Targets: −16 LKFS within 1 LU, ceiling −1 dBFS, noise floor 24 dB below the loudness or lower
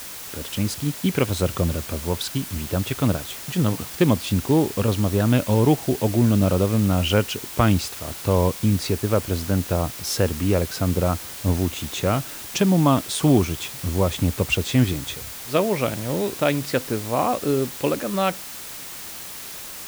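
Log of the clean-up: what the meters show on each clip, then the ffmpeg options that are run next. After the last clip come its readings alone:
background noise floor −36 dBFS; target noise floor −47 dBFS; integrated loudness −22.5 LKFS; sample peak −4.5 dBFS; target loudness −16.0 LKFS
→ -af "afftdn=noise_reduction=11:noise_floor=-36"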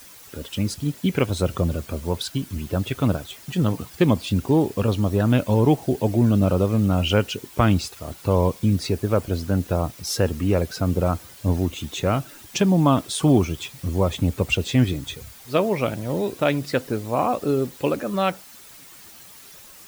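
background noise floor −45 dBFS; target noise floor −47 dBFS
→ -af "afftdn=noise_reduction=6:noise_floor=-45"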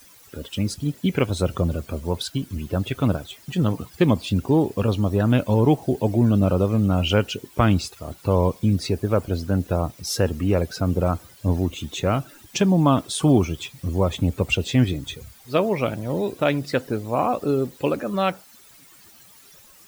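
background noise floor −50 dBFS; integrated loudness −23.0 LKFS; sample peak −5.0 dBFS; target loudness −16.0 LKFS
→ -af "volume=7dB,alimiter=limit=-1dB:level=0:latency=1"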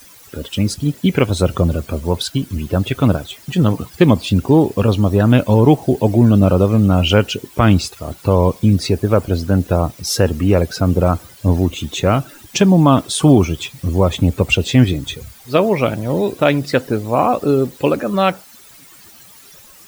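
integrated loudness −16.0 LKFS; sample peak −1.0 dBFS; background noise floor −43 dBFS

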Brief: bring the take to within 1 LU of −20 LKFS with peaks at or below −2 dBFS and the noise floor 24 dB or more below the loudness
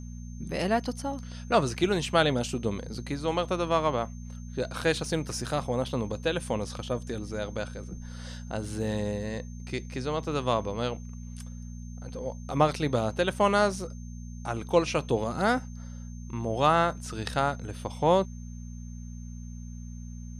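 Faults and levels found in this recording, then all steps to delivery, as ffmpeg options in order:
mains hum 60 Hz; hum harmonics up to 240 Hz; level of the hum −37 dBFS; interfering tone 6,300 Hz; level of the tone −55 dBFS; integrated loudness −29.0 LKFS; sample peak −8.0 dBFS; target loudness −20.0 LKFS
→ -af "bandreject=frequency=60:width_type=h:width=4,bandreject=frequency=120:width_type=h:width=4,bandreject=frequency=180:width_type=h:width=4,bandreject=frequency=240:width_type=h:width=4"
-af "bandreject=frequency=6300:width=30"
-af "volume=9dB,alimiter=limit=-2dB:level=0:latency=1"

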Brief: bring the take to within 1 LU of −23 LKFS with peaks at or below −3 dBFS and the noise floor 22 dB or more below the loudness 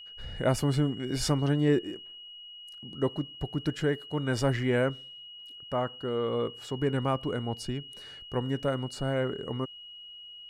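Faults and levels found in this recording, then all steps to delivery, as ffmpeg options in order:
interfering tone 2,900 Hz; level of the tone −44 dBFS; integrated loudness −30.0 LKFS; sample peak −13.0 dBFS; target loudness −23.0 LKFS
→ -af "bandreject=frequency=2900:width=30"
-af "volume=7dB"

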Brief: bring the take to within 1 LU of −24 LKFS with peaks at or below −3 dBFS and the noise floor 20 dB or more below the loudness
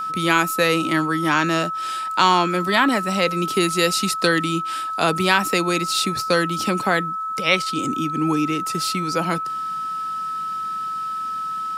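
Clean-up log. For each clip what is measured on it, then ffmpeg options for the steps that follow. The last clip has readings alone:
interfering tone 1,300 Hz; level of the tone −24 dBFS; integrated loudness −20.5 LKFS; sample peak −3.0 dBFS; target loudness −24.0 LKFS
→ -af "bandreject=frequency=1300:width=30"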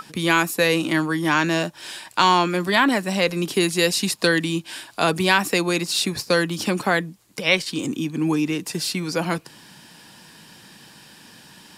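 interfering tone none found; integrated loudness −21.0 LKFS; sample peak −3.5 dBFS; target loudness −24.0 LKFS
→ -af "volume=-3dB"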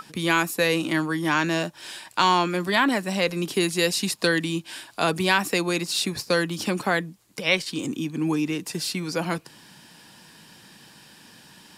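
integrated loudness −24.0 LKFS; sample peak −6.5 dBFS; background noise floor −51 dBFS

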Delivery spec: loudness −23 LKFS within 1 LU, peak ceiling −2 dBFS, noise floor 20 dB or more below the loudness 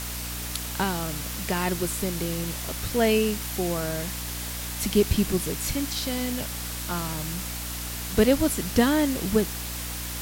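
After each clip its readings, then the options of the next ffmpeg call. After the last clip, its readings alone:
mains hum 60 Hz; hum harmonics up to 300 Hz; level of the hum −34 dBFS; background noise floor −33 dBFS; target noise floor −47 dBFS; integrated loudness −26.5 LKFS; sample peak −7.0 dBFS; target loudness −23.0 LKFS
→ -af "bandreject=frequency=60:width_type=h:width=4,bandreject=frequency=120:width_type=h:width=4,bandreject=frequency=180:width_type=h:width=4,bandreject=frequency=240:width_type=h:width=4,bandreject=frequency=300:width_type=h:width=4"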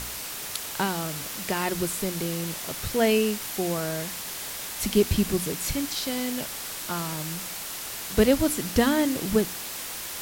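mains hum none found; background noise floor −36 dBFS; target noise floor −47 dBFS
→ -af "afftdn=noise_reduction=11:noise_floor=-36"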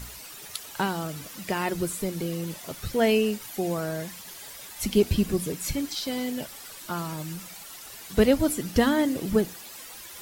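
background noise floor −43 dBFS; target noise floor −48 dBFS
→ -af "afftdn=noise_reduction=6:noise_floor=-43"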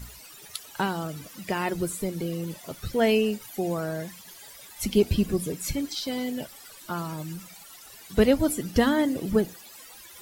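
background noise floor −48 dBFS; integrated loudness −27.5 LKFS; sample peak −7.5 dBFS; target loudness −23.0 LKFS
→ -af "volume=4.5dB"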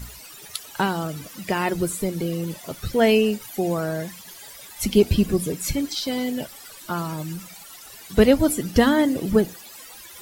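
integrated loudness −23.0 LKFS; sample peak −3.0 dBFS; background noise floor −43 dBFS

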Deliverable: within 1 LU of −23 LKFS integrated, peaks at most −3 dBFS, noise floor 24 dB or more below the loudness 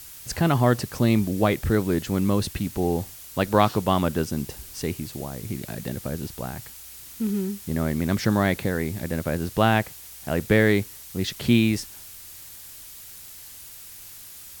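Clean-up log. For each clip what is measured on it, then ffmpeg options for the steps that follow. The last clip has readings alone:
background noise floor −43 dBFS; target noise floor −49 dBFS; integrated loudness −24.5 LKFS; sample peak −5.0 dBFS; target loudness −23.0 LKFS
→ -af "afftdn=noise_reduction=6:noise_floor=-43"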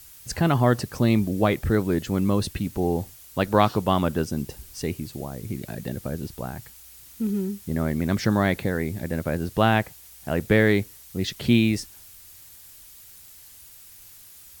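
background noise floor −48 dBFS; target noise floor −49 dBFS
→ -af "afftdn=noise_reduction=6:noise_floor=-48"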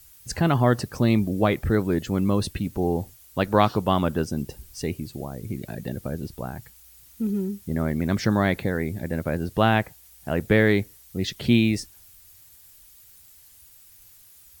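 background noise floor −52 dBFS; integrated loudness −24.5 LKFS; sample peak −5.0 dBFS; target loudness −23.0 LKFS
→ -af "volume=1.5dB"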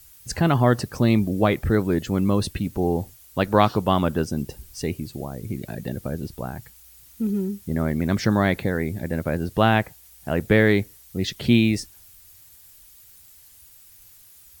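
integrated loudness −23.0 LKFS; sample peak −3.5 dBFS; background noise floor −50 dBFS

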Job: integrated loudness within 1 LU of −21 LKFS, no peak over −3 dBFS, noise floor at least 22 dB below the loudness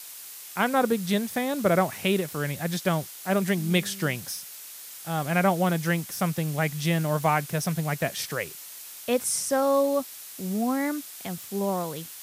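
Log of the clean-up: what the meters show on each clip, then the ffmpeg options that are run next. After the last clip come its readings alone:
background noise floor −43 dBFS; target noise floor −49 dBFS; integrated loudness −26.5 LKFS; sample peak −9.0 dBFS; target loudness −21.0 LKFS
→ -af "afftdn=noise_reduction=6:noise_floor=-43"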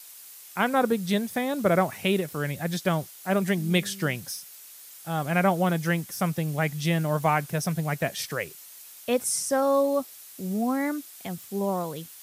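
background noise floor −47 dBFS; target noise floor −49 dBFS
→ -af "afftdn=noise_reduction=6:noise_floor=-47"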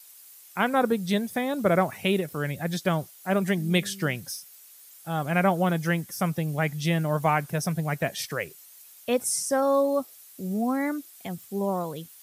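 background noise floor −51 dBFS; integrated loudness −26.5 LKFS; sample peak −9.5 dBFS; target loudness −21.0 LKFS
→ -af "volume=5.5dB"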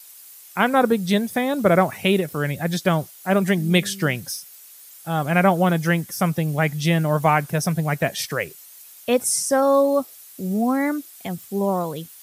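integrated loudness −21.0 LKFS; sample peak −4.0 dBFS; background noise floor −45 dBFS

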